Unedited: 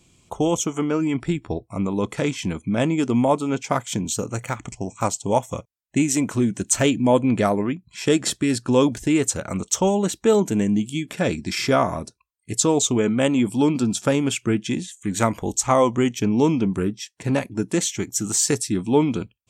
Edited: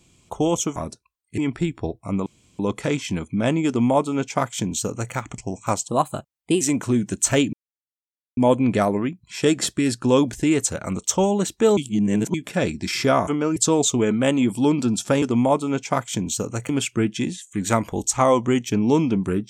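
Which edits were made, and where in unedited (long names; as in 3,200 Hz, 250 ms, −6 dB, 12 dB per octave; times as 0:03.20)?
0:00.76–0:01.05: swap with 0:11.91–0:12.53
0:01.93: splice in room tone 0.33 s
0:03.01–0:04.48: duplicate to 0:14.19
0:05.22–0:06.09: play speed 119%
0:07.01: splice in silence 0.84 s
0:10.41–0:10.98: reverse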